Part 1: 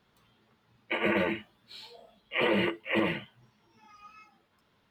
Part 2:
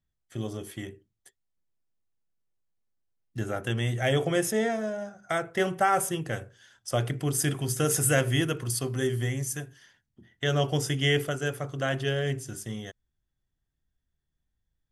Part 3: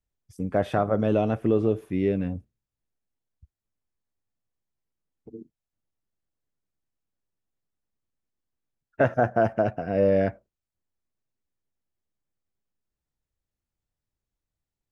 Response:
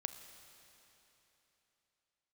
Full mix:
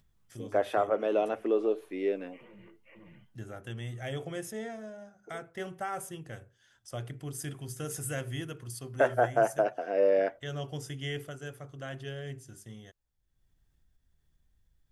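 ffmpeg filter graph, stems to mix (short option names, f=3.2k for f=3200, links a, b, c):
-filter_complex "[0:a]bass=f=250:g=13,treble=f=4k:g=-12,alimiter=level_in=3.5dB:limit=-24dB:level=0:latency=1:release=58,volume=-3.5dB,volume=-19.5dB[a];[1:a]lowshelf=f=89:g=6.5,acompressor=mode=upward:threshold=-39dB:ratio=2.5,volume=-12.5dB[b];[2:a]highpass=f=340:w=0.5412,highpass=f=340:w=1.3066,volume=-2.5dB[c];[a][b][c]amix=inputs=3:normalize=0"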